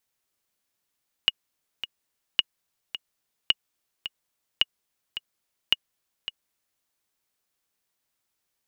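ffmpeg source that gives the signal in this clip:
-f lavfi -i "aevalsrc='pow(10,(-5.5-12.5*gte(mod(t,2*60/108),60/108))/20)*sin(2*PI*2880*mod(t,60/108))*exp(-6.91*mod(t,60/108)/0.03)':d=5.55:s=44100"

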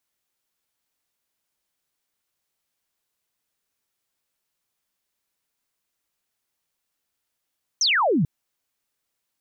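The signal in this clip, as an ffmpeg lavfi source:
-f lavfi -i "aevalsrc='0.141*clip(t/0.002,0,1)*clip((0.44-t)/0.002,0,1)*sin(2*PI*6400*0.44/log(130/6400)*(exp(log(130/6400)*t/0.44)-1))':d=0.44:s=44100"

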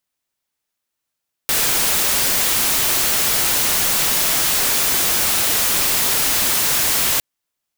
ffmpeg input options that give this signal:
-f lavfi -i "anoisesrc=c=white:a=0.231:d=5.71:r=44100:seed=1"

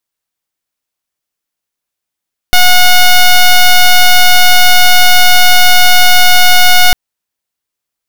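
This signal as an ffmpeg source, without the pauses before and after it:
-f lavfi -i "aevalsrc='0.668*(2*lt(mod(726*t,1),0.09)-1)':d=4.4:s=44100"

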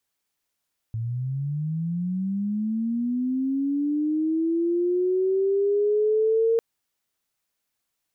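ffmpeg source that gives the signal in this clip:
-f lavfi -i "aevalsrc='pow(10,(-25.5+8*t/5.65)/20)*sin(2*PI*(110*t+350*t*t/(2*5.65)))':d=5.65:s=44100"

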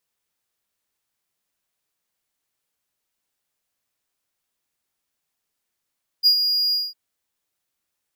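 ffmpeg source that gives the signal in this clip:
-f lavfi -i "aevalsrc='0.376*(1-4*abs(mod(4860*t+0.25,1)-0.5))':d=0.705:s=44100,afade=t=in:d=0.035,afade=t=out:st=0.035:d=0.088:silence=0.422,afade=t=out:st=0.5:d=0.205"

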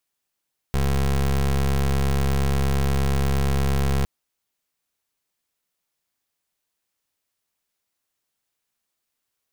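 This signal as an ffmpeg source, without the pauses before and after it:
-f lavfi -i "aevalsrc='0.0944*(2*lt(mod(68.5*t,1),0.23)-1)':d=3.31:s=44100"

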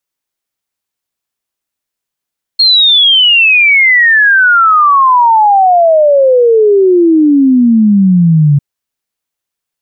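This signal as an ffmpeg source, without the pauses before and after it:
-f lavfi -i "aevalsrc='0.668*clip(min(t,6-t)/0.01,0,1)*sin(2*PI*4300*6/log(140/4300)*(exp(log(140/4300)*t/6)-1))':d=6:s=44100"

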